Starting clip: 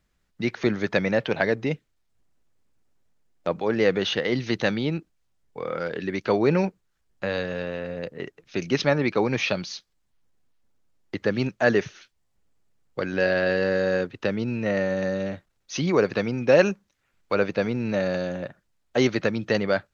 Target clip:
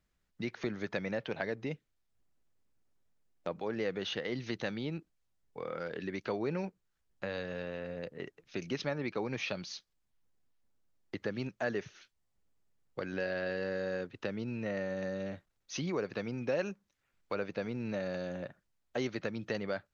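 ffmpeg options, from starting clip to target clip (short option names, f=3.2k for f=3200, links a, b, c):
-af "acompressor=threshold=-28dB:ratio=2,volume=-7.5dB"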